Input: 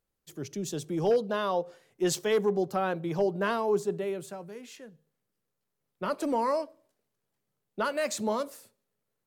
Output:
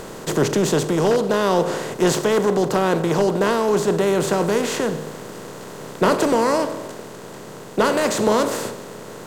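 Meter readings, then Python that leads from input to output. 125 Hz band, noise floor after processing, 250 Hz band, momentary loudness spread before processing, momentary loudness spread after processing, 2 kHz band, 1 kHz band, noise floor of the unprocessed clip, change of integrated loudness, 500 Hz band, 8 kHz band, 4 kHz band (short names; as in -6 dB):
+13.5 dB, -37 dBFS, +12.5 dB, 17 LU, 17 LU, +11.5 dB, +10.5 dB, -83 dBFS, +10.0 dB, +10.5 dB, +12.0 dB, +12.5 dB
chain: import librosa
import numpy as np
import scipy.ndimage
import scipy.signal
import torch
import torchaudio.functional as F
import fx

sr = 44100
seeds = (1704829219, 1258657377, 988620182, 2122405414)

y = fx.bin_compress(x, sr, power=0.4)
y = fx.low_shelf(y, sr, hz=170.0, db=9.0)
y = fx.rider(y, sr, range_db=3, speed_s=0.5)
y = y * librosa.db_to_amplitude(4.5)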